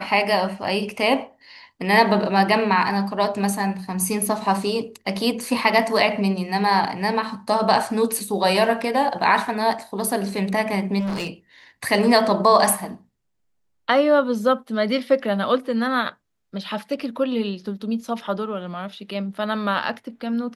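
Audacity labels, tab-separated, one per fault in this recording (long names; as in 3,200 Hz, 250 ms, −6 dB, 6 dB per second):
10.990000	11.300000	clipping −23 dBFS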